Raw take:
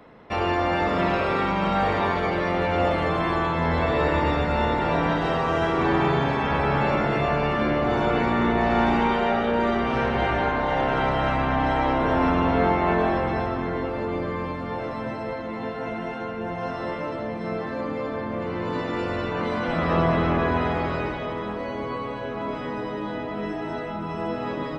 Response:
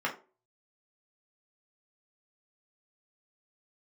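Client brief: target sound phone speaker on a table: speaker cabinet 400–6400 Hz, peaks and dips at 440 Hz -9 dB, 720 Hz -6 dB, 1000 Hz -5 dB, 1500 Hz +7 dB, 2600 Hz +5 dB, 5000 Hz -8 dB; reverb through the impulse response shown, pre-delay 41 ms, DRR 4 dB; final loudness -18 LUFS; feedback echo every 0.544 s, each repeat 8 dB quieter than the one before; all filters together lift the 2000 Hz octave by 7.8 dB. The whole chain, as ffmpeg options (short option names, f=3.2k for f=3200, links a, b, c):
-filter_complex "[0:a]equalizer=f=2k:t=o:g=5,aecho=1:1:544|1088|1632|2176|2720:0.398|0.159|0.0637|0.0255|0.0102,asplit=2[a][b];[1:a]atrim=start_sample=2205,adelay=41[c];[b][c]afir=irnorm=-1:irlink=0,volume=-12.5dB[d];[a][d]amix=inputs=2:normalize=0,highpass=f=400:w=0.5412,highpass=f=400:w=1.3066,equalizer=f=440:t=q:w=4:g=-9,equalizer=f=720:t=q:w=4:g=-6,equalizer=f=1k:t=q:w=4:g=-5,equalizer=f=1.5k:t=q:w=4:g=7,equalizer=f=2.6k:t=q:w=4:g=5,equalizer=f=5k:t=q:w=4:g=-8,lowpass=f=6.4k:w=0.5412,lowpass=f=6.4k:w=1.3066,volume=4.5dB"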